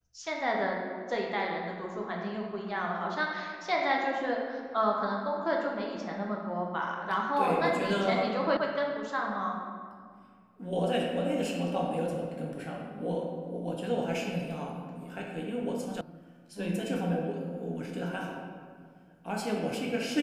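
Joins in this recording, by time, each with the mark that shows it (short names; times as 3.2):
8.57 sound cut off
16.01 sound cut off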